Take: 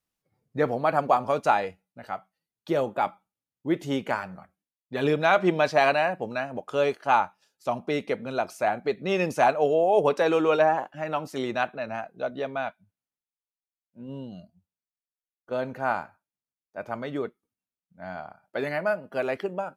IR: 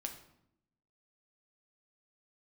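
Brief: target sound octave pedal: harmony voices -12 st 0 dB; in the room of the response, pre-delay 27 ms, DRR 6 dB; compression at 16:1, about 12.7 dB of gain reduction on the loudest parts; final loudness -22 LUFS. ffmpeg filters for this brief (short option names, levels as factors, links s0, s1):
-filter_complex "[0:a]acompressor=threshold=0.0398:ratio=16,asplit=2[s0][s1];[1:a]atrim=start_sample=2205,adelay=27[s2];[s1][s2]afir=irnorm=-1:irlink=0,volume=0.596[s3];[s0][s3]amix=inputs=2:normalize=0,asplit=2[s4][s5];[s5]asetrate=22050,aresample=44100,atempo=2,volume=1[s6];[s4][s6]amix=inputs=2:normalize=0,volume=2.99"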